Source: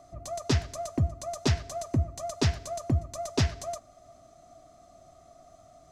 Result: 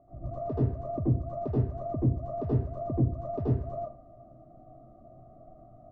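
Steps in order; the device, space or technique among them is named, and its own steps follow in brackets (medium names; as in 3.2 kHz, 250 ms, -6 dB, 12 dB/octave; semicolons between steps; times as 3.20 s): television next door (compression 4:1, threshold -30 dBFS, peak gain reduction 9 dB; low-pass 500 Hz 12 dB/octave; reverberation RT60 0.40 s, pre-delay 76 ms, DRR -8 dB); trim -2 dB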